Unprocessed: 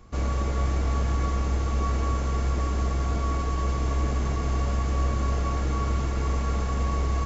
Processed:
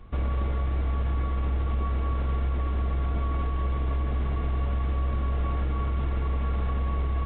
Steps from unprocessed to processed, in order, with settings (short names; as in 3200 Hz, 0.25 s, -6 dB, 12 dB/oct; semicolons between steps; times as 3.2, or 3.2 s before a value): low shelf 65 Hz +8 dB; limiter -20 dBFS, peak gain reduction 8 dB; A-law 64 kbps 8000 Hz